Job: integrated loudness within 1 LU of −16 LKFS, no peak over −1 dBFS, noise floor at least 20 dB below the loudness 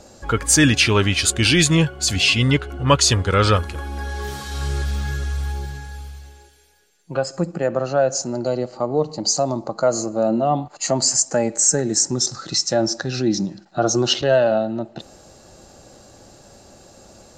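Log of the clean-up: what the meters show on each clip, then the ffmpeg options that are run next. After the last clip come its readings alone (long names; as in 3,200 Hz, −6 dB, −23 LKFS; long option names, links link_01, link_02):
integrated loudness −19.5 LKFS; sample peak −3.0 dBFS; target loudness −16.0 LKFS
→ -af "volume=3.5dB,alimiter=limit=-1dB:level=0:latency=1"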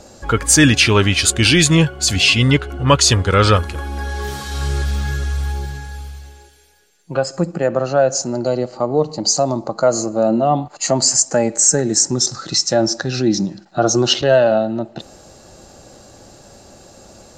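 integrated loudness −16.0 LKFS; sample peak −1.0 dBFS; background noise floor −45 dBFS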